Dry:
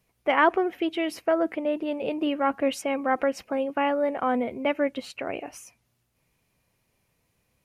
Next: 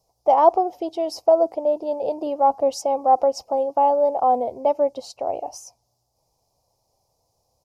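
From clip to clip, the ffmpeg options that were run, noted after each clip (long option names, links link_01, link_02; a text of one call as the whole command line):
ffmpeg -i in.wav -af "firequalizer=gain_entry='entry(110,0);entry(190,-9);entry(540,6);entry(800,12);entry(1600,-24);entry(2600,-17);entry(5000,10);entry(9100,-1)':delay=0.05:min_phase=1" out.wav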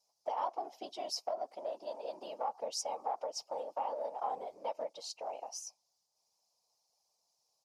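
ffmpeg -i in.wav -af "afftfilt=real='hypot(re,im)*cos(2*PI*random(0))':imag='hypot(re,im)*sin(2*PI*random(1))':win_size=512:overlap=0.75,acompressor=threshold=-24dB:ratio=6,bandpass=frequency=4300:width_type=q:width=0.62:csg=0,volume=3dB" out.wav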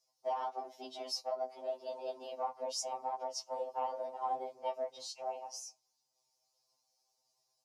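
ffmpeg -i in.wav -af "flanger=delay=5.1:depth=2.7:regen=85:speed=1.7:shape=sinusoidal,afftfilt=real='re*2.45*eq(mod(b,6),0)':imag='im*2.45*eq(mod(b,6),0)':win_size=2048:overlap=0.75,volume=6.5dB" out.wav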